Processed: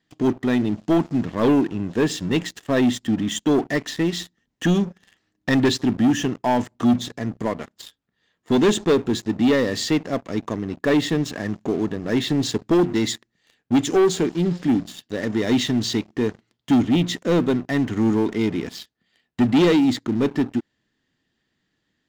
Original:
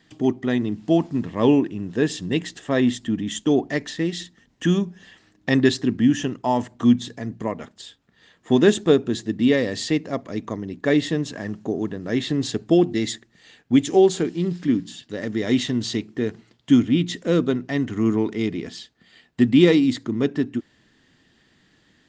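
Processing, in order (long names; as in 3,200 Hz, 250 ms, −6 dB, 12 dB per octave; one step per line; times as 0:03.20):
leveller curve on the samples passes 3
level −8 dB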